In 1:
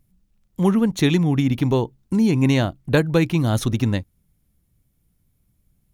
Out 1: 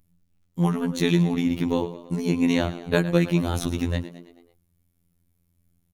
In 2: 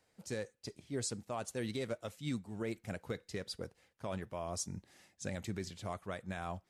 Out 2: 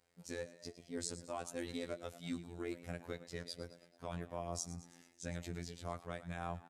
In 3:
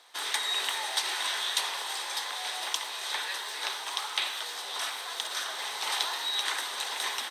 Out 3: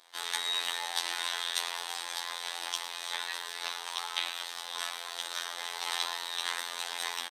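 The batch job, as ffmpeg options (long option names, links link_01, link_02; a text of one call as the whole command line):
ffmpeg -i in.wav -filter_complex "[0:a]asplit=6[link_01][link_02][link_03][link_04][link_05][link_06];[link_02]adelay=109,afreqshift=43,volume=-14.5dB[link_07];[link_03]adelay=218,afreqshift=86,volume=-20dB[link_08];[link_04]adelay=327,afreqshift=129,volume=-25.5dB[link_09];[link_05]adelay=436,afreqshift=172,volume=-31dB[link_10];[link_06]adelay=545,afreqshift=215,volume=-36.6dB[link_11];[link_01][link_07][link_08][link_09][link_10][link_11]amix=inputs=6:normalize=0,afftfilt=real='hypot(re,im)*cos(PI*b)':imag='0':win_size=2048:overlap=0.75" out.wav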